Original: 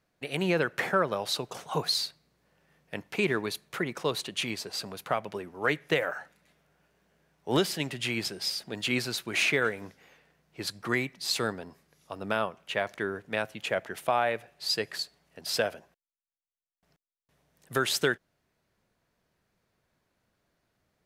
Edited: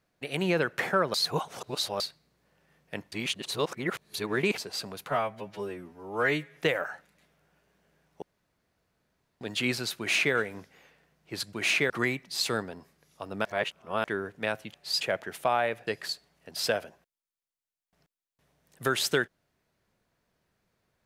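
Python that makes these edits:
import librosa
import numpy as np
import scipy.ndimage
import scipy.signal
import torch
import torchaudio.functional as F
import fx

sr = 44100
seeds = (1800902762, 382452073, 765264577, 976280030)

y = fx.edit(x, sr, fx.reverse_span(start_s=1.14, length_s=0.86),
    fx.reverse_span(start_s=3.12, length_s=1.46),
    fx.stretch_span(start_s=5.1, length_s=0.73, factor=2.0),
    fx.room_tone_fill(start_s=7.49, length_s=1.19),
    fx.duplicate(start_s=9.25, length_s=0.37, to_s=10.8),
    fx.reverse_span(start_s=12.35, length_s=0.59),
    fx.move(start_s=14.5, length_s=0.27, to_s=13.64), tone=tone)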